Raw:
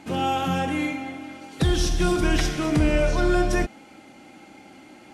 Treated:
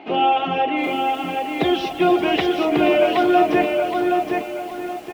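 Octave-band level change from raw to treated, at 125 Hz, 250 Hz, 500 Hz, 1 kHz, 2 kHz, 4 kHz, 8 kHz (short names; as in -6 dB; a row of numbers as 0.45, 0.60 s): -10.0 dB, +4.5 dB, +8.0 dB, +10.0 dB, +4.5 dB, +4.5 dB, under -10 dB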